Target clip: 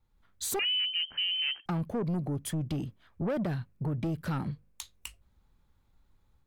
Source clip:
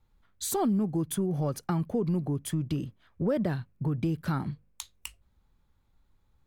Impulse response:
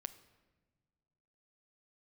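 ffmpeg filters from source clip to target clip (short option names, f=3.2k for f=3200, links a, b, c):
-filter_complex "[0:a]dynaudnorm=f=130:g=3:m=5.5dB,asoftclip=type=tanh:threshold=-22dB,asettb=1/sr,asplit=3[a][b][c];[a]atrim=end=0.594[d];[b]atrim=start=0.59:end=1.66,asetpts=PTS-STARTPTS,afade=t=in:d=0.004:c=qsin,afade=t=out:st=1.066:d=0.004:c=qsin,lowpass=f=2.7k:t=q:w=0.5098,lowpass=f=2.7k:t=q:w=0.6013,lowpass=f=2.7k:t=q:w=0.9,lowpass=f=2.7k:t=q:w=2.563,afreqshift=-3200[e];[c]atrim=start=1.656[f];[d][e]acrossfade=d=0.004:c1=hsin:c2=qsin[g];[g][f]acrossfade=d=0.004:c1=qsin:c2=hsin,volume=-4.5dB"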